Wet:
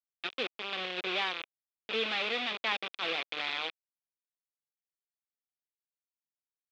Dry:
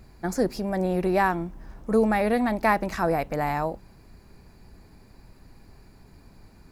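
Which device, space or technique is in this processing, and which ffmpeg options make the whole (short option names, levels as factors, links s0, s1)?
hand-held game console: -af "acrusher=bits=3:mix=0:aa=0.000001,highpass=500,equalizer=f=640:t=q:w=4:g=-8,equalizer=f=910:t=q:w=4:g=-9,equalizer=f=1700:t=q:w=4:g=-4,equalizer=f=2500:t=q:w=4:g=9,equalizer=f=3500:t=q:w=4:g=10,lowpass=f=4100:w=0.5412,lowpass=f=4100:w=1.3066,volume=0.398"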